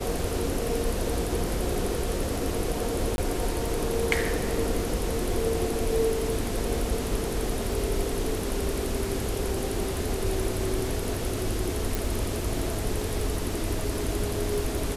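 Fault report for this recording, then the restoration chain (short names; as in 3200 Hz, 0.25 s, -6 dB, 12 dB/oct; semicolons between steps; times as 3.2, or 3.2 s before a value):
crackle 20/s -34 dBFS
3.16–3.18 gap 21 ms
11.95 pop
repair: de-click; interpolate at 3.16, 21 ms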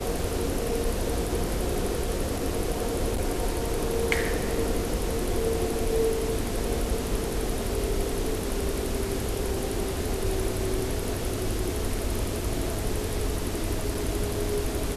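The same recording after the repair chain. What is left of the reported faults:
none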